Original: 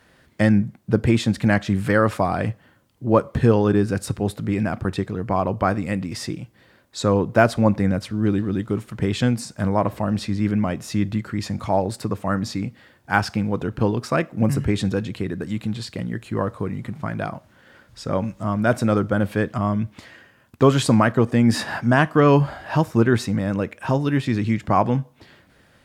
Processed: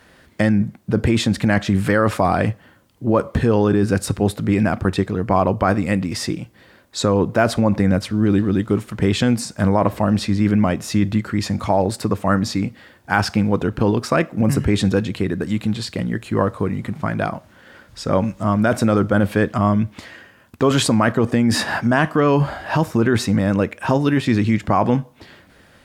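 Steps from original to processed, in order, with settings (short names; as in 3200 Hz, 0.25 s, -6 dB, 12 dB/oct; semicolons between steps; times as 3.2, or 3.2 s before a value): bell 130 Hz -6 dB 0.3 oct; in parallel at +1 dB: negative-ratio compressor -20 dBFS, ratio -0.5; on the sum: gain -2 dB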